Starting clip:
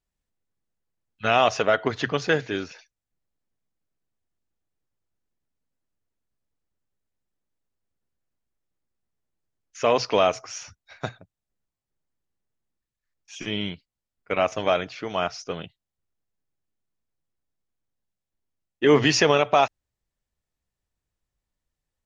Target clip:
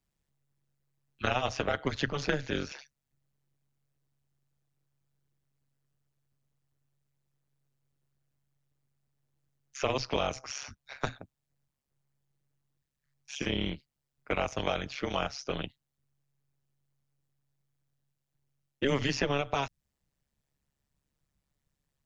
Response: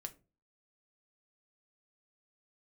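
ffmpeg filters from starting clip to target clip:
-filter_complex "[0:a]tremolo=f=140:d=0.974,acrossover=split=170|1700|5200[s0][s1][s2][s3];[s0]acompressor=threshold=0.01:ratio=4[s4];[s1]acompressor=threshold=0.0141:ratio=4[s5];[s2]acompressor=threshold=0.00708:ratio=4[s6];[s3]acompressor=threshold=0.00178:ratio=4[s7];[s4][s5][s6][s7]amix=inputs=4:normalize=0,volume=2"

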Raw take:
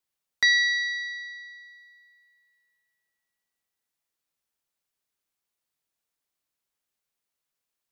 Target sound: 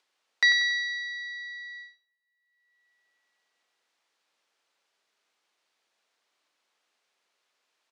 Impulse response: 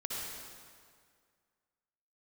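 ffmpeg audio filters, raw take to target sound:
-filter_complex "[0:a]agate=range=0.00631:threshold=0.00224:ratio=16:detection=peak,acompressor=mode=upward:threshold=0.0355:ratio=2.5,highpass=400,lowpass=4800,asplit=2[s0][s1];[s1]adelay=94,lowpass=f=2900:p=1,volume=0.398,asplit=2[s2][s3];[s3]adelay=94,lowpass=f=2900:p=1,volume=0.53,asplit=2[s4][s5];[s5]adelay=94,lowpass=f=2900:p=1,volume=0.53,asplit=2[s6][s7];[s7]adelay=94,lowpass=f=2900:p=1,volume=0.53,asplit=2[s8][s9];[s9]adelay=94,lowpass=f=2900:p=1,volume=0.53,asplit=2[s10][s11];[s11]adelay=94,lowpass=f=2900:p=1,volume=0.53[s12];[s0][s2][s4][s6][s8][s10][s12]amix=inputs=7:normalize=0"

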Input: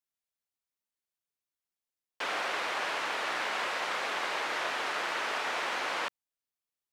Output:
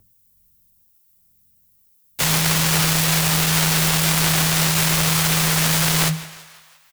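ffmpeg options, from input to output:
-filter_complex "[0:a]highpass=120,highshelf=f=5000:g=8.5,asplit=2[s0][s1];[s1]asplit=5[s2][s3][s4][s5][s6];[s2]adelay=168,afreqshift=88,volume=0.188[s7];[s3]adelay=336,afreqshift=176,volume=0.101[s8];[s4]adelay=504,afreqshift=264,volume=0.055[s9];[s5]adelay=672,afreqshift=352,volume=0.0295[s10];[s6]adelay=840,afreqshift=440,volume=0.016[s11];[s7][s8][s9][s10][s11]amix=inputs=5:normalize=0[s12];[s0][s12]amix=inputs=2:normalize=0,aeval=exprs='val(0)+0.00447*(sin(2*PI*50*n/s)+sin(2*PI*2*50*n/s)/2+sin(2*PI*3*50*n/s)/3+sin(2*PI*4*50*n/s)/4+sin(2*PI*5*50*n/s)/5)':c=same,flanger=delay=16:depth=5.5:speed=0.52,bandreject=f=50:t=h:w=6,bandreject=f=100:t=h:w=6,bandreject=f=150:t=h:w=6,bandreject=f=200:t=h:w=6,bandreject=f=250:t=h:w=6,bandreject=f=300:t=h:w=6,bandreject=f=350:t=h:w=6,bandreject=f=400:t=h:w=6,bandreject=f=450:t=h:w=6,bandreject=f=500:t=h:w=6,asplit=4[s13][s14][s15][s16];[s14]asetrate=35002,aresample=44100,atempo=1.25992,volume=1[s17];[s15]asetrate=58866,aresample=44100,atempo=0.749154,volume=0.562[s18];[s16]asetrate=66075,aresample=44100,atempo=0.66742,volume=0.501[s19];[s13][s17][s18][s19]amix=inputs=4:normalize=0,aemphasis=mode=production:type=riaa,aeval=exprs='0.2*(cos(1*acos(clip(val(0)/0.2,-1,1)))-cos(1*PI/2))+0.00631*(cos(5*acos(clip(val(0)/0.2,-1,1)))-cos(5*PI/2))+0.0562*(cos(6*acos(clip(val(0)/0.2,-1,1)))-cos(6*PI/2))+0.0501*(cos(7*acos(clip(val(0)/0.2,-1,1)))-cos(7*PI/2))':c=same,afreqshift=-160,alimiter=level_in=5.31:limit=0.891:release=50:level=0:latency=1,volume=0.531"

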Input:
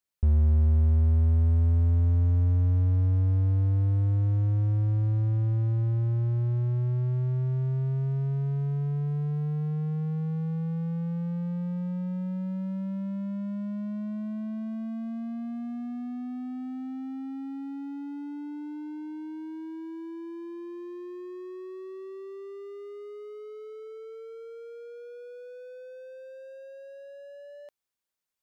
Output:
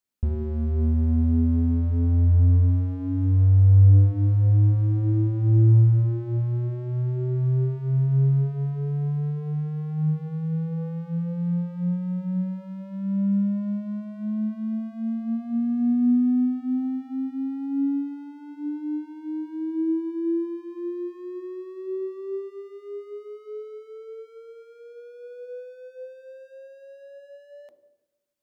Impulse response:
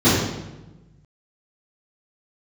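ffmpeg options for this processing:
-filter_complex "[0:a]asplit=2[s0][s1];[s1]equalizer=f=310:t=o:w=1.4:g=12[s2];[1:a]atrim=start_sample=2205[s3];[s2][s3]afir=irnorm=-1:irlink=0,volume=0.0158[s4];[s0][s4]amix=inputs=2:normalize=0"

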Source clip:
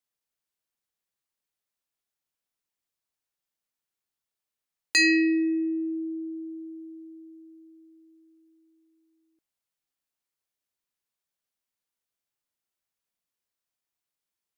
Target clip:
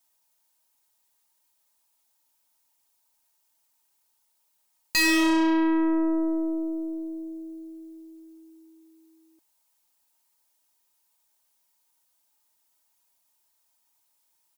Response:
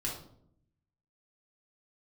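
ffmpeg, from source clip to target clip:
-af "highshelf=f=4500:g=12,aecho=1:1:3.2:0.97,asoftclip=type=tanh:threshold=0.0944,equalizer=f=860:t=o:w=0.52:g=13,aeval=exprs='0.168*(cos(1*acos(clip(val(0)/0.168,-1,1)))-cos(1*PI/2))+0.0211*(cos(5*acos(clip(val(0)/0.168,-1,1)))-cos(5*PI/2))+0.0168*(cos(8*acos(clip(val(0)/0.168,-1,1)))-cos(8*PI/2))':c=same"

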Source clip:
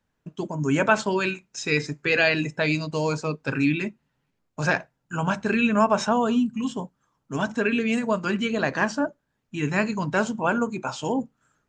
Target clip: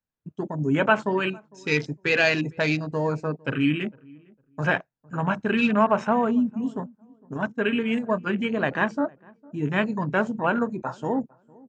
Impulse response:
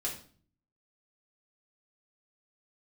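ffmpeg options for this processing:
-filter_complex "[0:a]asplit=3[s0][s1][s2];[s0]afade=t=out:st=7.33:d=0.02[s3];[s1]agate=range=0.0224:threshold=0.0794:ratio=3:detection=peak,afade=t=in:st=7.33:d=0.02,afade=t=out:st=8.26:d=0.02[s4];[s2]afade=t=in:st=8.26:d=0.02[s5];[s3][s4][s5]amix=inputs=3:normalize=0,afwtdn=0.0251,asplit=2[s6][s7];[s7]adelay=455,lowpass=f=840:p=1,volume=0.0631,asplit=2[s8][s9];[s9]adelay=455,lowpass=f=840:p=1,volume=0.24[s10];[s6][s8][s10]amix=inputs=3:normalize=0"

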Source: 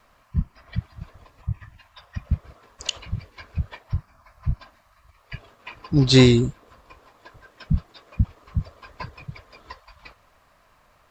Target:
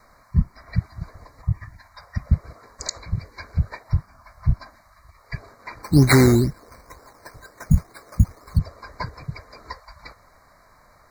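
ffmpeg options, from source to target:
-filter_complex "[0:a]alimiter=limit=0.355:level=0:latency=1:release=426,asplit=3[s0][s1][s2];[s0]afade=t=out:st=5.82:d=0.02[s3];[s1]acrusher=samples=10:mix=1:aa=0.000001:lfo=1:lforange=6:lforate=2.1,afade=t=in:st=5.82:d=0.02,afade=t=out:st=8.57:d=0.02[s4];[s2]afade=t=in:st=8.57:d=0.02[s5];[s3][s4][s5]amix=inputs=3:normalize=0,asuperstop=centerf=3000:order=20:qfactor=2,volume=1.78"

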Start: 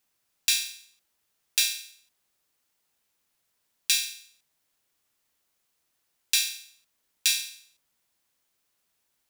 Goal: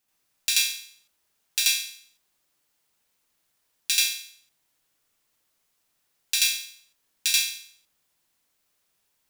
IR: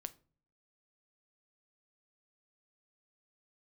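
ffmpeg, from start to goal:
-filter_complex "[0:a]asplit=2[s0][s1];[1:a]atrim=start_sample=2205,adelay=83[s2];[s1][s2]afir=irnorm=-1:irlink=0,volume=2.11[s3];[s0][s3]amix=inputs=2:normalize=0,volume=0.794"

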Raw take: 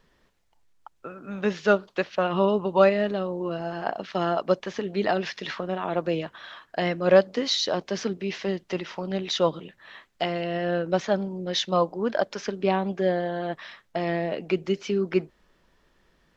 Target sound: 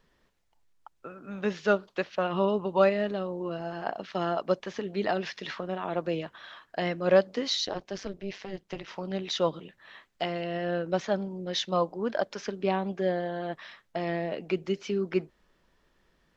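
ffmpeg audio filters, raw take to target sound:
-filter_complex "[0:a]asettb=1/sr,asplit=3[s0][s1][s2];[s0]atrim=end=7.654[s3];[s1]atrim=start=7.65:end=8.88,asetpts=PTS-STARTPTS,afade=t=in:d=0.004:c=qsin,afade=t=out:st=1.226:d=0.004:c=qsin,tremolo=f=200:d=0.919[s4];[s2]atrim=start=8.876[s5];[s3][s4]acrossfade=d=0.004:c1=hsin:c2=qsin[s6];[s6][s5]acrossfade=d=0.004:c1=qsin:c2=hsin,volume=0.631"

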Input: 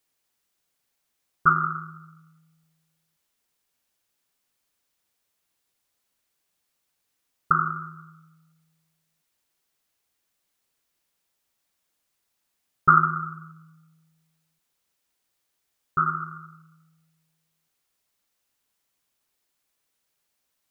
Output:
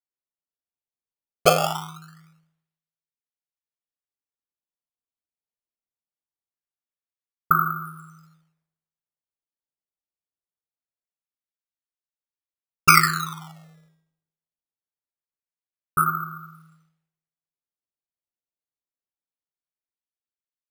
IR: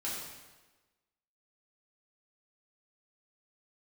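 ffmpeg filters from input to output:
-af "acrusher=samples=14:mix=1:aa=0.000001:lfo=1:lforange=22.4:lforate=0.23,bandreject=f=106.6:t=h:w=4,bandreject=f=213.2:t=h:w=4,bandreject=f=319.8:t=h:w=4,bandreject=f=426.4:t=h:w=4,bandreject=f=533:t=h:w=4,bandreject=f=639.6:t=h:w=4,bandreject=f=746.2:t=h:w=4,bandreject=f=852.8:t=h:w=4,bandreject=f=959.4:t=h:w=4,bandreject=f=1066:t=h:w=4,bandreject=f=1172.6:t=h:w=4,bandreject=f=1279.2:t=h:w=4,bandreject=f=1385.8:t=h:w=4,bandreject=f=1492.4:t=h:w=4,bandreject=f=1599:t=h:w=4,bandreject=f=1705.6:t=h:w=4,bandreject=f=1812.2:t=h:w=4,bandreject=f=1918.8:t=h:w=4,bandreject=f=2025.4:t=h:w=4,bandreject=f=2132:t=h:w=4,bandreject=f=2238.6:t=h:w=4,bandreject=f=2345.2:t=h:w=4,bandreject=f=2451.8:t=h:w=4,bandreject=f=2558.4:t=h:w=4,bandreject=f=2665:t=h:w=4,bandreject=f=2771.6:t=h:w=4,bandreject=f=2878.2:t=h:w=4,bandreject=f=2984.8:t=h:w=4,bandreject=f=3091.4:t=h:w=4,bandreject=f=3198:t=h:w=4,agate=range=0.0224:threshold=0.00178:ratio=3:detection=peak,volume=1.33"

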